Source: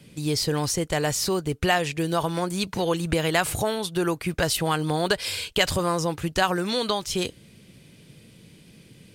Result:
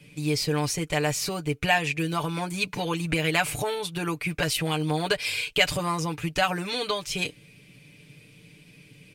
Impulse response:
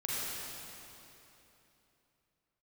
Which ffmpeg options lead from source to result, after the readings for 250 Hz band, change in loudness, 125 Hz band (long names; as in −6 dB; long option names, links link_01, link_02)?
−2.5 dB, −1.5 dB, −1.0 dB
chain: -af "equalizer=frequency=2400:width=3.3:gain=10.5,aecho=1:1:6.8:0.75,volume=-5dB"